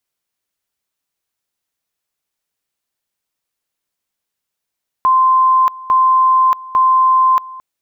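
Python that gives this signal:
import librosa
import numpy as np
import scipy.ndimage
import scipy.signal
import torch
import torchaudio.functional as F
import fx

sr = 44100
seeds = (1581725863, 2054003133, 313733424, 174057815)

y = fx.two_level_tone(sr, hz=1040.0, level_db=-8.0, drop_db=20.5, high_s=0.63, low_s=0.22, rounds=3)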